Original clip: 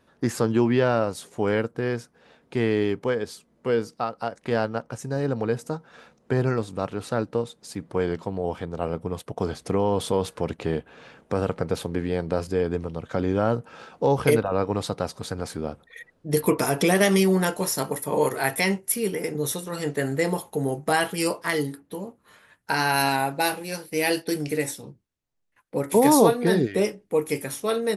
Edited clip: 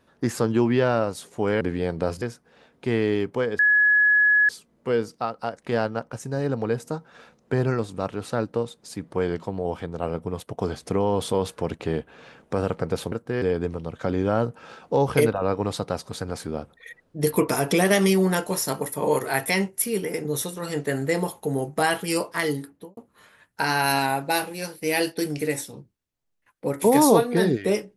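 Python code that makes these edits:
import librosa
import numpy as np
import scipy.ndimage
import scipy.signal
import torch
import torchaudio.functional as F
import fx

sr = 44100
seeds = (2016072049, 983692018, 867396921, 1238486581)

y = fx.studio_fade_out(x, sr, start_s=21.82, length_s=0.25)
y = fx.edit(y, sr, fx.swap(start_s=1.61, length_s=0.3, other_s=11.91, other_length_s=0.61),
    fx.insert_tone(at_s=3.28, length_s=0.9, hz=1690.0, db=-14.5), tone=tone)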